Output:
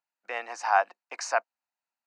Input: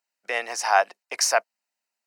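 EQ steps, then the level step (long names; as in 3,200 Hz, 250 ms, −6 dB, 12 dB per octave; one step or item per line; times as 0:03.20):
loudspeaker in its box 320–7,000 Hz, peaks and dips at 420 Hz −10 dB, 610 Hz −6 dB, 2,000 Hz −5 dB, 3,300 Hz −7 dB, 5,400 Hz −8 dB
high-shelf EQ 2,600 Hz −9.5 dB
0.0 dB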